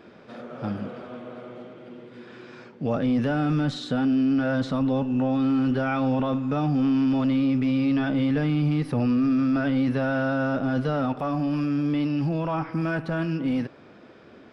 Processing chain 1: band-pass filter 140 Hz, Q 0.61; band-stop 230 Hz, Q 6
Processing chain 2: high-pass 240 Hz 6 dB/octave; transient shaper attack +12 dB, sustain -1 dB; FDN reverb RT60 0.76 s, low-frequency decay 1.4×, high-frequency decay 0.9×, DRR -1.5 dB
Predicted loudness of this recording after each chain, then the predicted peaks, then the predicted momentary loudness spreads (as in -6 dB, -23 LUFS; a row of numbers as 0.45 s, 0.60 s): -28.0 LUFS, -19.5 LUFS; -17.5 dBFS, -4.5 dBFS; 10 LU, 19 LU